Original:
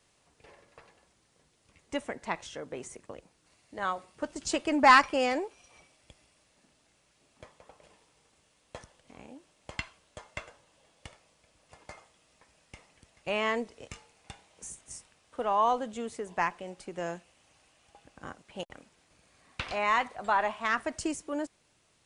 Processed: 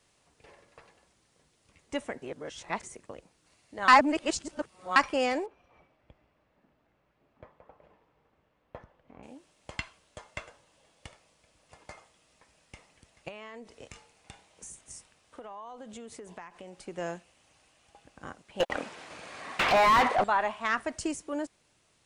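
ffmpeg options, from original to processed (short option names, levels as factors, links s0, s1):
-filter_complex "[0:a]asettb=1/sr,asplit=3[s0][s1][s2];[s0]atrim=end=5.464[s3];[s1]atrim=start=5.46:end=9.23,asetpts=PTS-STARTPTS,afade=t=in:d=0.004:c=qsin,afade=t=out:st=3.766:d=0.004:c=qsin,lowpass=1600[s4];[s2]atrim=start=9.226[s5];[s3][s4]acrossfade=d=0.004:c1=hsin:c2=qsin[s6];[s6][s5]acrossfade=d=0.004:c1=qsin:c2=hsin,asettb=1/sr,asplit=3[s7][s8][s9];[s7]atrim=end=13.284[s10];[s8]atrim=start=13.28:end=16.81,asetpts=PTS-STARTPTS,afade=t=in:d=0.004:c=qsin,afade=t=out:st=3.526:d=0.004:c=qsin,acompressor=threshold=0.01:ratio=12:attack=3.2:release=140:knee=1:detection=peak[s11];[s9]atrim=start=16.806[s12];[s10][s11]acrossfade=d=0.004:c1=hsin:c2=qsin[s13];[s13][s12]acrossfade=d=0.004:c1=qsin:c2=hsin,asettb=1/sr,asplit=3[s14][s15][s16];[s14]atrim=end=18.604[s17];[s15]atrim=start=18.6:end=20.24,asetpts=PTS-STARTPTS,afade=t=in:d=0.004:c=qsin,afade=t=out:st=1.636:d=0.004:c=qsin,asplit=2[s18][s19];[s19]highpass=f=720:p=1,volume=39.8,asoftclip=type=tanh:threshold=0.224[s20];[s18][s20]amix=inputs=2:normalize=0,lowpass=f=1500:p=1,volume=0.501[s21];[s16]atrim=start=20.236[s22];[s17][s21]acrossfade=d=0.004:c1=hsin:c2=qsin[s23];[s23][s22]acrossfade=d=0.004:c1=qsin:c2=hsin,asplit=5[s24][s25][s26][s27][s28];[s24]atrim=end=2.222[s29];[s25]atrim=start=2.218:end=2.832,asetpts=PTS-STARTPTS,areverse[s30];[s26]atrim=start=2.828:end=3.882[s31];[s27]atrim=start=3.878:end=4.962,asetpts=PTS-STARTPTS,areverse[s32];[s28]atrim=start=4.958[s33];[s29][s30]acrossfade=d=0.004:c1=hsin:c2=hsin[s34];[s34][s31]acrossfade=d=0.004:c1=hsin:c2=hsin[s35];[s35][s32]acrossfade=d=0.004:c1=hsin:c2=hsin[s36];[s36][s33]acrossfade=d=0.004:c1=hsin:c2=hsin"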